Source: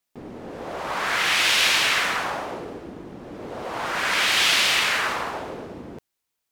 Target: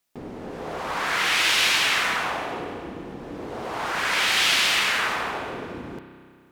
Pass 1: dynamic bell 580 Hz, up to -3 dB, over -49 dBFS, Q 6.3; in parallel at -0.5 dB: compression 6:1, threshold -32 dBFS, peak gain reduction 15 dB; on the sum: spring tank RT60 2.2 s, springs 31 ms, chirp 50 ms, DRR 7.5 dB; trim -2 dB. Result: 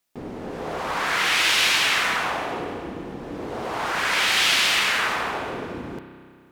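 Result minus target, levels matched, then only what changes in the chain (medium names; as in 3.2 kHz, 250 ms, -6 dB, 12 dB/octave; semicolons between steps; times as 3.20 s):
compression: peak gain reduction -8 dB
change: compression 6:1, threshold -41.5 dBFS, peak gain reduction 23 dB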